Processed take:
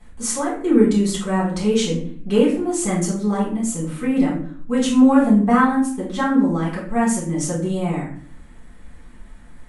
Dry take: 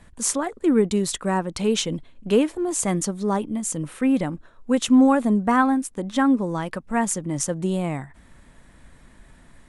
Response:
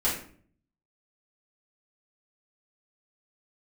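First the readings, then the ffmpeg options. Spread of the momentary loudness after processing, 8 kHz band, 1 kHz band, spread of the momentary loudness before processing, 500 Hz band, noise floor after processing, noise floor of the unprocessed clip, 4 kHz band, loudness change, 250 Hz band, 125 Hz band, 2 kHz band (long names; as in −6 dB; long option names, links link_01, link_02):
10 LU, 0.0 dB, +2.0 dB, 9 LU, +2.5 dB, −42 dBFS, −52 dBFS, +0.5 dB, +3.0 dB, +4.0 dB, +4.5 dB, +2.5 dB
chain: -filter_complex "[1:a]atrim=start_sample=2205,asetrate=43659,aresample=44100[link_01];[0:a][link_01]afir=irnorm=-1:irlink=0,volume=-8dB"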